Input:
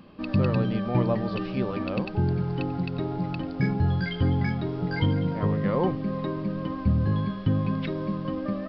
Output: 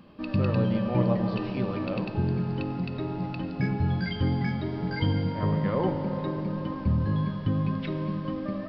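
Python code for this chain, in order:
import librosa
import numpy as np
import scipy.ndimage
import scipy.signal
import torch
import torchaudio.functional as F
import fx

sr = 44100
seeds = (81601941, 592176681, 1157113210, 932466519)

y = fx.rev_fdn(x, sr, rt60_s=4.0, lf_ratio=1.0, hf_ratio=0.75, size_ms=10.0, drr_db=4.5)
y = y * librosa.db_to_amplitude(-2.5)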